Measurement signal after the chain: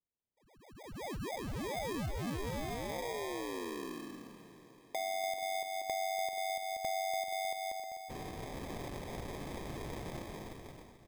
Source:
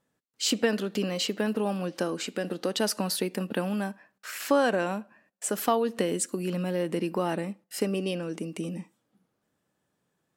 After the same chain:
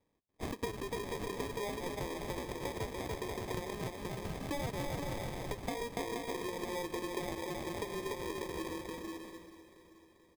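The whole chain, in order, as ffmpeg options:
ffmpeg -i in.wav -filter_complex "[0:a]highpass=frequency=350:width=0.5412,highpass=frequency=350:width=1.3066,equalizer=frequency=610:width_type=q:width=4:gain=-10,equalizer=frequency=1500:width_type=q:width=4:gain=7,equalizer=frequency=3300:width_type=q:width=4:gain=-9,lowpass=frequency=4100:width=0.5412,lowpass=frequency=4100:width=1.3066,asplit=2[link_01][link_02];[link_02]aecho=0:1:290|478.5|601|680.7|732.4:0.631|0.398|0.251|0.158|0.1[link_03];[link_01][link_03]amix=inputs=2:normalize=0,acompressor=threshold=-38dB:ratio=4,acrusher=samples=31:mix=1:aa=0.000001,asplit=2[link_04][link_05];[link_05]aecho=0:1:436|872|1308|1744|2180:0.178|0.0978|0.0538|0.0296|0.0163[link_06];[link_04][link_06]amix=inputs=2:normalize=0,volume=1dB" out.wav

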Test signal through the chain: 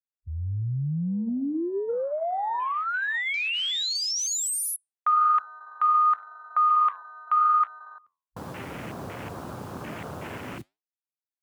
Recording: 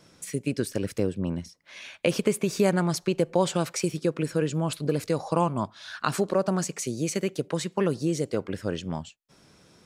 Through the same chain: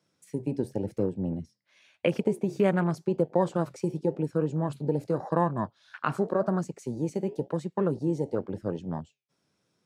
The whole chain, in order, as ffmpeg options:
ffmpeg -i in.wav -af "highpass=frequency=86:width=0.5412,highpass=frequency=86:width=1.3066,flanger=delay=5.5:depth=7:regen=-80:speed=0.91:shape=sinusoidal,afwtdn=0.0112,volume=3dB" out.wav

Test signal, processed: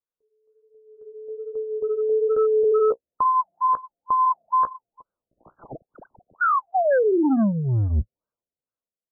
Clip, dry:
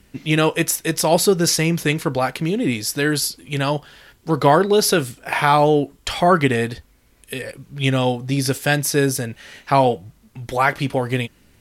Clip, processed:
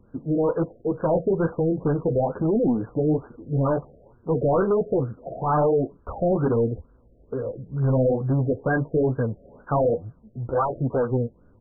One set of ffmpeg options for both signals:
ffmpeg -i in.wav -filter_complex "[0:a]equalizer=frequency=500:width_type=o:width=0.33:gain=6,equalizer=frequency=800:width_type=o:width=0.33:gain=-4,equalizer=frequency=4000:width_type=o:width=0.33:gain=-8,dynaudnorm=framelen=150:gausssize=13:maxgain=15dB,asplit=2[link_01][link_02];[link_02]aeval=exprs='0.237*(abs(mod(val(0)/0.237+3,4)-2)-1)':channel_layout=same,volume=-10dB[link_03];[link_01][link_03]amix=inputs=2:normalize=0,flanger=delay=8.3:depth=8.3:regen=-18:speed=1.2:shape=sinusoidal,aresample=16000,asoftclip=type=tanh:threshold=-16.5dB,aresample=44100,afftfilt=real='re*lt(b*sr/1024,700*pow(1700/700,0.5+0.5*sin(2*PI*2.2*pts/sr)))':imag='im*lt(b*sr/1024,700*pow(1700/700,0.5+0.5*sin(2*PI*2.2*pts/sr)))':win_size=1024:overlap=0.75" out.wav

